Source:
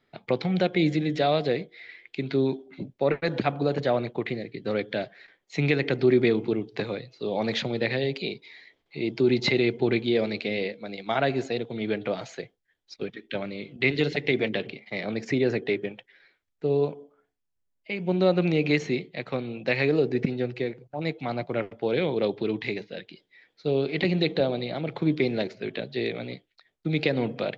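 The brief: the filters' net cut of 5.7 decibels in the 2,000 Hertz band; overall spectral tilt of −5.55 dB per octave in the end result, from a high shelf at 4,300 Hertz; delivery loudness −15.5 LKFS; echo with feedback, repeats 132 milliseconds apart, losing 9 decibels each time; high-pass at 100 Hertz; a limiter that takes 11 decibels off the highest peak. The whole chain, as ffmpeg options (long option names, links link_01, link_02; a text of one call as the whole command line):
ffmpeg -i in.wav -af "highpass=100,equalizer=frequency=2000:width_type=o:gain=-6,highshelf=frequency=4300:gain=-3,alimiter=limit=-21.5dB:level=0:latency=1,aecho=1:1:132|264|396|528:0.355|0.124|0.0435|0.0152,volume=16.5dB" out.wav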